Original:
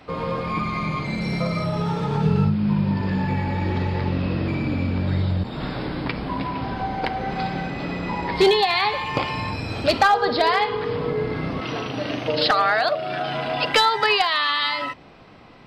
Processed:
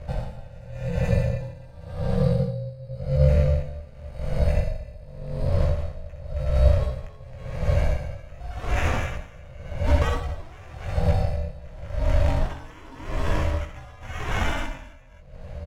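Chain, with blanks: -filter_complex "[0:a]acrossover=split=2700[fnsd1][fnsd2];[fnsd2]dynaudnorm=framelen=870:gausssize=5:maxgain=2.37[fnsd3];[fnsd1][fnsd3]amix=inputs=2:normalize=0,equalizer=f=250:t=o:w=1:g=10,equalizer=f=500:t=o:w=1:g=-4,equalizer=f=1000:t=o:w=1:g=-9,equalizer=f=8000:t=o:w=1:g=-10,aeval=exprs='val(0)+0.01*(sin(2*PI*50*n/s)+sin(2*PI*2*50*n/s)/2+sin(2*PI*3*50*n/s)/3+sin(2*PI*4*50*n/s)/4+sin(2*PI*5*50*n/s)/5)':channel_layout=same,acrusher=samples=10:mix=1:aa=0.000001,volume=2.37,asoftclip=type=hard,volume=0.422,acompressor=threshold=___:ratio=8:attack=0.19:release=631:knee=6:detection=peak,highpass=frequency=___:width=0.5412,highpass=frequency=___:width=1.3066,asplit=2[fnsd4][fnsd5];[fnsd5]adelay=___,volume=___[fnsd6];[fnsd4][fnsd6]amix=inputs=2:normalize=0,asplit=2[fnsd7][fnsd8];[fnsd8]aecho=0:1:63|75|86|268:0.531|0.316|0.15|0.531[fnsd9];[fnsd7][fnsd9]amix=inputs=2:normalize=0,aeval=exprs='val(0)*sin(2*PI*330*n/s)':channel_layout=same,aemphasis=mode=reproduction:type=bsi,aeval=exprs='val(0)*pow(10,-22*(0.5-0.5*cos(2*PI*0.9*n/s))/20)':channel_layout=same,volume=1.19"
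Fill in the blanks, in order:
0.112, 170, 170, 20, 0.631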